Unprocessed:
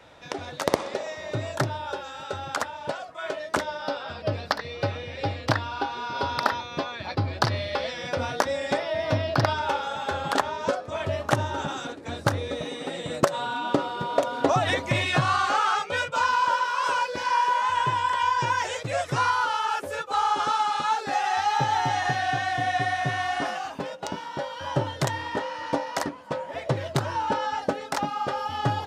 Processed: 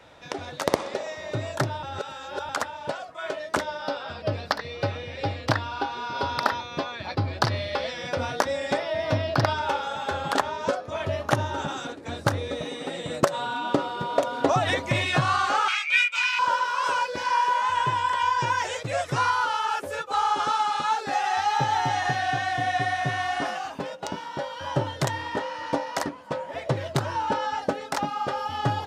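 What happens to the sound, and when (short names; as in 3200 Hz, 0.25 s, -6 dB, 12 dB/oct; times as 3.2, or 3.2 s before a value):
1.83–2.49 reverse
10.77–11.53 notch 7900 Hz, Q 7.7
15.68–16.39 resonant high-pass 2300 Hz, resonance Q 8.4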